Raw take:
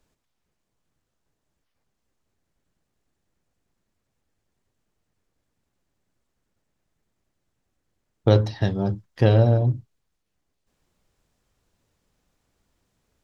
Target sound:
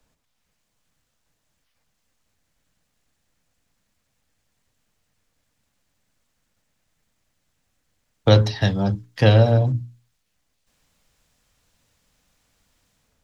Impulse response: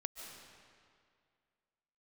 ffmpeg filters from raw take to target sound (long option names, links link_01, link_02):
-filter_complex "[0:a]equalizer=frequency=370:width_type=o:width=0.23:gain=-10.5,bandreject=frequency=60:width_type=h:width=6,bandreject=frequency=120:width_type=h:width=6,bandreject=frequency=180:width_type=h:width=6,bandreject=frequency=240:width_type=h:width=6,bandreject=frequency=300:width_type=h:width=6,bandreject=frequency=360:width_type=h:width=6,bandreject=frequency=420:width_type=h:width=6,acrossover=split=150|360|1600[link_01][link_02][link_03][link_04];[link_04]dynaudnorm=framelen=130:gausssize=5:maxgain=6dB[link_05];[link_01][link_02][link_03][link_05]amix=inputs=4:normalize=0,volume=3.5dB"